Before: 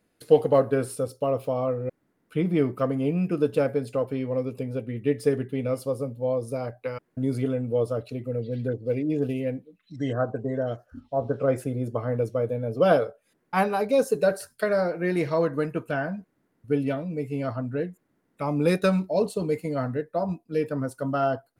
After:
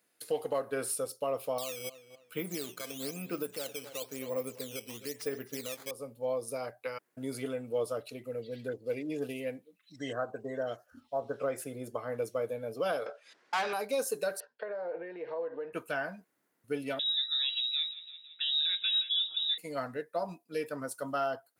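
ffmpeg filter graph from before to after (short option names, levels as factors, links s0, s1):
-filter_complex "[0:a]asettb=1/sr,asplit=3[s0][s1][s2];[s0]atrim=end=1.584[s3];[s1]atrim=start=1.58:end=5.91,asetpts=PTS-STARTPTS,afade=t=in:d=0.004:c=qsin,afade=t=out:st=4.326:d=0.004:c=qsin,acrusher=samples=9:mix=1:aa=0.000001:lfo=1:lforange=14.4:lforate=1,asplit=2[s4][s5];[s5]adelay=260,lowpass=f=3300:p=1,volume=0.141,asplit=2[s6][s7];[s7]adelay=260,lowpass=f=3300:p=1,volume=0.21[s8];[s4][s6][s8]amix=inputs=3:normalize=0,atrim=end_sample=190953[s9];[s2]atrim=start=5.906[s10];[s3][s9]acrossfade=d=0.004:c1=hsin:c2=qsin[s11];[s11][s10]acrossfade=d=0.004:c1=qsin:c2=hsin,asettb=1/sr,asplit=3[s12][s13][s14];[s12]atrim=end=13.064[s15];[s13]atrim=start=13.06:end=13.73,asetpts=PTS-STARTPTS,afade=t=in:d=0.004:c=qsin,afade=t=out:st=0.666:d=0.004:c=qsin,acompressor=threshold=0.0398:ratio=5:attack=3.2:release=140:knee=1:detection=peak,lowpass=f=5100:t=q:w=1.5,asplit=2[s16][s17];[s17]highpass=f=720:p=1,volume=10,asoftclip=type=tanh:threshold=0.106[s18];[s16][s18]amix=inputs=2:normalize=0,lowpass=f=3500:p=1,volume=0.501[s19];[s14]atrim=start=13.726[s20];[s15][s19]acrossfade=d=0.004:c1=hsin:c2=qsin[s21];[s21][s20]acrossfade=d=0.004:c1=qsin:c2=hsin,asettb=1/sr,asplit=3[s22][s23][s24];[s22]atrim=end=14.404[s25];[s23]atrim=start=14.4:end=15.73,asetpts=PTS-STARTPTS,afade=t=in:d=0.004:c=qsin,afade=t=out:st=1.326:d=0.004:c=qsin,acompressor=threshold=0.0316:ratio=16:attack=3.2:release=140:knee=1:detection=peak,acrusher=bits=8:mode=log:mix=0:aa=0.000001,highpass=260,equalizer=f=480:t=q:w=4:g=10,equalizer=f=870:t=q:w=4:g=4,equalizer=f=1300:t=q:w=4:g=-8,equalizer=f=2200:t=q:w=4:g=-8,lowpass=f=2600:w=0.5412,lowpass=f=2600:w=1.3066[s26];[s24]atrim=start=15.726[s27];[s25][s26]acrossfade=d=0.004:c1=hsin:c2=qsin[s28];[s28][s27]acrossfade=d=0.004:c1=qsin:c2=hsin,asettb=1/sr,asplit=3[s29][s30][s31];[s29]atrim=end=16.994[s32];[s30]atrim=start=16.99:end=19.58,asetpts=PTS-STARTPTS,afade=t=in:d=0.004:c=qsin,afade=t=out:st=2.586:d=0.004:c=qsin,aecho=1:1:168|336|504|672|840:0.112|0.0662|0.0391|0.023|0.0136,atrim=end_sample=114219,lowpass=f=3400:t=q:w=0.5098,lowpass=f=3400:t=q:w=0.6013,lowpass=f=3400:t=q:w=0.9,lowpass=f=3400:t=q:w=2.563,afreqshift=-4000[s33];[s31]atrim=start=19.576[s34];[s32][s33]acrossfade=d=0.004:c1=hsin:c2=qsin[s35];[s35][s34]acrossfade=d=0.004:c1=qsin:c2=hsin,highpass=f=870:p=1,highshelf=f=6300:g=8.5,alimiter=limit=0.0841:level=0:latency=1:release=257,volume=0.891"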